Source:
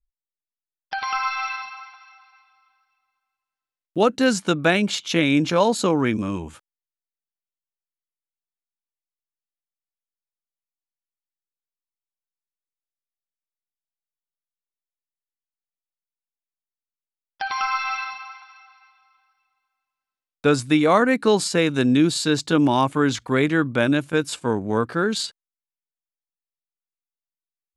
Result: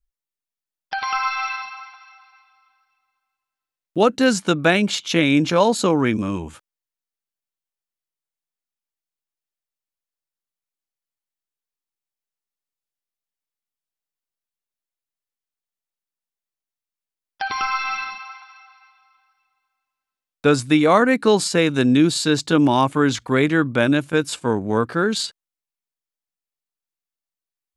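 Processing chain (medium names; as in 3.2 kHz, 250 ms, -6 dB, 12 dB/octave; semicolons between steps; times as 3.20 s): 17.48–18.29 s: resonant low shelf 500 Hz +8.5 dB, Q 1.5; trim +2 dB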